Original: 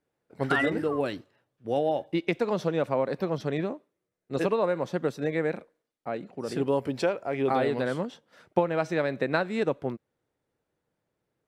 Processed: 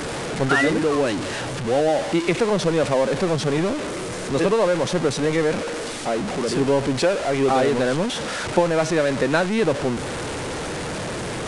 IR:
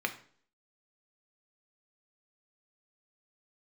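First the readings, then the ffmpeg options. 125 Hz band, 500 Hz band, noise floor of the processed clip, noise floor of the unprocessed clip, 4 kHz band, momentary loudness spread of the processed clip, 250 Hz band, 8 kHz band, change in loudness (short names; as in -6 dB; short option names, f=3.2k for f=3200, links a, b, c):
+8.5 dB, +7.5 dB, -29 dBFS, -83 dBFS, +14.0 dB, 9 LU, +8.0 dB, n/a, +7.0 dB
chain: -af "aeval=exprs='val(0)+0.5*0.0531*sgn(val(0))':c=same,aresample=22050,aresample=44100,volume=4dB"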